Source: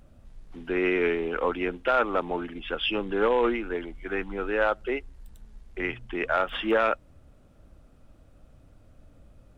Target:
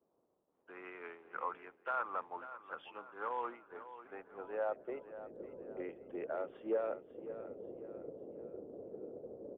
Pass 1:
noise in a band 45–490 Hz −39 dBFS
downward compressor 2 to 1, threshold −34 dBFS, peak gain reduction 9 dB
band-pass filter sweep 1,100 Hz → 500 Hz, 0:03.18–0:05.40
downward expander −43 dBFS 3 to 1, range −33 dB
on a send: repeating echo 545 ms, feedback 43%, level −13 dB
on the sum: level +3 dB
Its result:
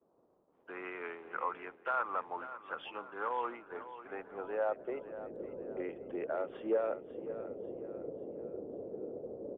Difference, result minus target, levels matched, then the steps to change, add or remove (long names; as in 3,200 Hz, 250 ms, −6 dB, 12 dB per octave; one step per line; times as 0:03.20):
downward compressor: peak gain reduction −3 dB
change: downward compressor 2 to 1, threshold −40.5 dBFS, peak gain reduction 12 dB